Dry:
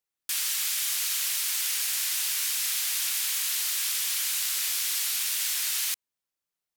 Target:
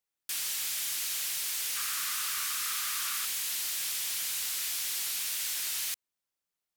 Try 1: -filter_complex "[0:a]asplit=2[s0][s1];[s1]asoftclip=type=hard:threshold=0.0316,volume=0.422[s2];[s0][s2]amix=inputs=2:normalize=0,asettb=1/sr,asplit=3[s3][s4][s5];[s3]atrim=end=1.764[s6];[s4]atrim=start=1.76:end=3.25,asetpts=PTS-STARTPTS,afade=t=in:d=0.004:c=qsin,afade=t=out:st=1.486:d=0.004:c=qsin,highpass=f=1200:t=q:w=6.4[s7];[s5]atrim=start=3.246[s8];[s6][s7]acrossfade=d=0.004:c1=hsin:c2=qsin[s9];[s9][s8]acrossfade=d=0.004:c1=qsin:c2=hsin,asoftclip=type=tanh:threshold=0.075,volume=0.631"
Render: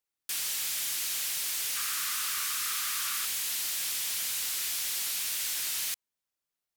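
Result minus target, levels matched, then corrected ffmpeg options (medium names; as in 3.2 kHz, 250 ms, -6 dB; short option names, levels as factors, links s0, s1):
hard clipper: distortion -4 dB
-filter_complex "[0:a]asplit=2[s0][s1];[s1]asoftclip=type=hard:threshold=0.00841,volume=0.422[s2];[s0][s2]amix=inputs=2:normalize=0,asettb=1/sr,asplit=3[s3][s4][s5];[s3]atrim=end=1.764[s6];[s4]atrim=start=1.76:end=3.25,asetpts=PTS-STARTPTS,afade=t=in:d=0.004:c=qsin,afade=t=out:st=1.486:d=0.004:c=qsin,highpass=f=1200:t=q:w=6.4[s7];[s5]atrim=start=3.246[s8];[s6][s7]acrossfade=d=0.004:c1=hsin:c2=qsin[s9];[s9][s8]acrossfade=d=0.004:c1=qsin:c2=hsin,asoftclip=type=tanh:threshold=0.075,volume=0.631"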